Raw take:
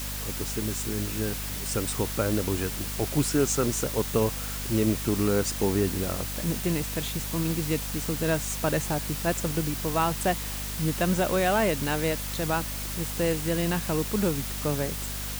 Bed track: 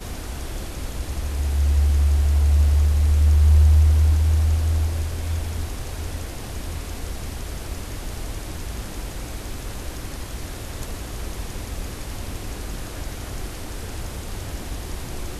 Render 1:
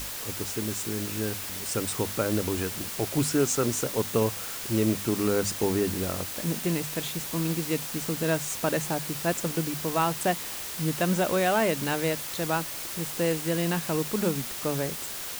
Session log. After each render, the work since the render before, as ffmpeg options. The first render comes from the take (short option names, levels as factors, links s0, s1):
-af "bandreject=f=50:t=h:w=6,bandreject=f=100:t=h:w=6,bandreject=f=150:t=h:w=6,bandreject=f=200:t=h:w=6,bandreject=f=250:t=h:w=6"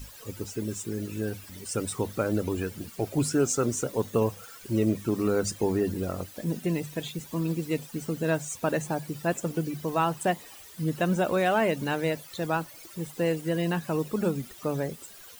-af "afftdn=nr=16:nf=-36"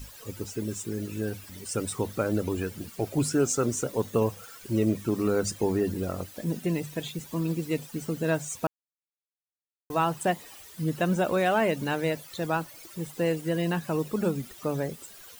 -filter_complex "[0:a]asplit=3[s0][s1][s2];[s0]atrim=end=8.67,asetpts=PTS-STARTPTS,afade=t=out:st=8.666:d=0.004:c=hsin[s3];[s1]atrim=start=8.67:end=9.9,asetpts=PTS-STARTPTS,volume=0[s4];[s2]atrim=start=9.9,asetpts=PTS-STARTPTS,afade=t=in:d=0.004:c=hsin[s5];[s3][s4][s5]concat=n=3:v=0:a=1"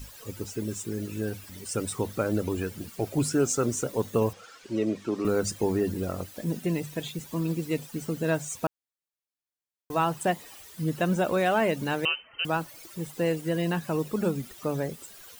-filter_complex "[0:a]asettb=1/sr,asplit=3[s0][s1][s2];[s0]atrim=end=4.334[s3];[s1]atrim=start=4.33:end=5.25,asetpts=PTS-STARTPTS,afade=t=in:d=0.004:c=qsin,afade=t=out:st=0.916:d=0.004:c=qsin,acrossover=split=220 7000:gain=0.224 1 0.0794[s4][s5][s6];[s4][s5][s6]amix=inputs=3:normalize=0[s7];[s2]atrim=start=5.246[s8];[s3][s7]acrossfade=d=0.004:c1=hsin:c2=qsin[s9];[s9][s8]acrossfade=d=0.004:c1=qsin:c2=hsin,asettb=1/sr,asplit=3[s10][s11][s12];[s10]atrim=end=12.054[s13];[s11]atrim=start=12.05:end=12.45,asetpts=PTS-STARTPTS,afade=t=in:d=0.004:c=qsin,afade=t=out:st=0.396:d=0.004:c=qsin,lowpass=f=2700:t=q:w=0.5098,lowpass=f=2700:t=q:w=0.6013,lowpass=f=2700:t=q:w=0.9,lowpass=f=2700:t=q:w=2.563,afreqshift=-3200[s14];[s12]atrim=start=12.446[s15];[s13][s14]acrossfade=d=0.004:c1=hsin:c2=qsin[s16];[s16][s15]acrossfade=d=0.004:c1=qsin:c2=hsin"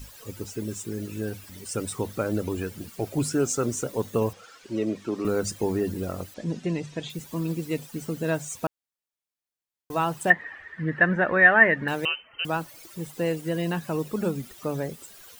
-filter_complex "[0:a]asettb=1/sr,asplit=3[s0][s1][s2];[s0]atrim=end=6.344[s3];[s1]atrim=start=6.34:end=7.1,asetpts=PTS-STARTPTS,afade=t=in:d=0.004:c=qsin,afade=t=out:st=0.756:d=0.004:c=qsin,lowpass=f=7000:w=0.5412,lowpass=f=7000:w=1.3066[s4];[s2]atrim=start=7.096[s5];[s3][s4]acrossfade=d=0.004:c1=hsin:c2=qsin[s6];[s6][s5]acrossfade=d=0.004:c1=qsin:c2=hsin,asettb=1/sr,asplit=3[s7][s8][s9];[s7]atrim=end=10.304[s10];[s8]atrim=start=10.3:end=11.88,asetpts=PTS-STARTPTS,afade=t=in:d=0.004:c=qsin,afade=t=out:st=1.576:d=0.004:c=qsin,lowpass=f=1800:t=q:w=13[s11];[s9]atrim=start=11.876[s12];[s10][s11]acrossfade=d=0.004:c1=hsin:c2=qsin[s13];[s13][s12]acrossfade=d=0.004:c1=qsin:c2=hsin"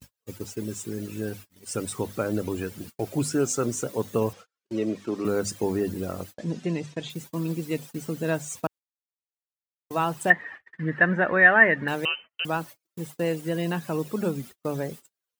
-af "agate=range=0.00891:threshold=0.01:ratio=16:detection=peak,highpass=88"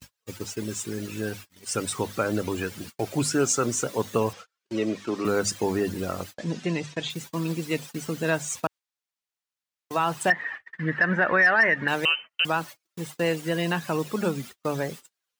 -filter_complex "[0:a]acrossover=split=810|7700[s0][s1][s2];[s1]acontrast=75[s3];[s0][s3][s2]amix=inputs=3:normalize=0,alimiter=limit=0.251:level=0:latency=1:release=85"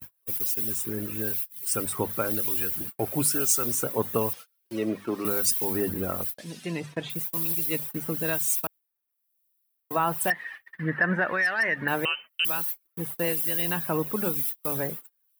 -filter_complex "[0:a]acrossover=split=2200[s0][s1];[s0]aeval=exprs='val(0)*(1-0.7/2+0.7/2*cos(2*PI*1*n/s))':c=same[s2];[s1]aeval=exprs='val(0)*(1-0.7/2-0.7/2*cos(2*PI*1*n/s))':c=same[s3];[s2][s3]amix=inputs=2:normalize=0,aexciter=amount=9.8:drive=6.3:freq=9800"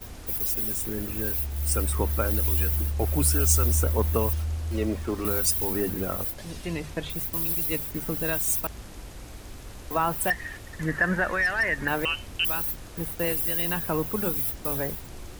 -filter_complex "[1:a]volume=0.316[s0];[0:a][s0]amix=inputs=2:normalize=0"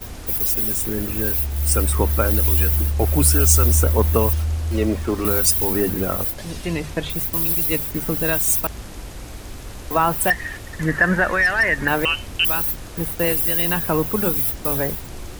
-af "volume=2.24,alimiter=limit=0.794:level=0:latency=1"